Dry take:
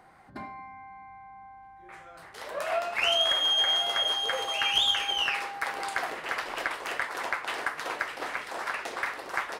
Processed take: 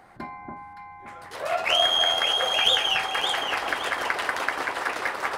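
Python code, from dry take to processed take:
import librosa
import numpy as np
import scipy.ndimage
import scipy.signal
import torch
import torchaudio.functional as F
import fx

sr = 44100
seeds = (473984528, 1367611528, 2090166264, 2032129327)

p1 = fx.stretch_grains(x, sr, factor=0.56, grain_ms=24.0)
p2 = p1 + fx.echo_alternate(p1, sr, ms=284, hz=1200.0, feedback_pct=56, wet_db=-2.0, dry=0)
y = p2 * librosa.db_to_amplitude(5.0)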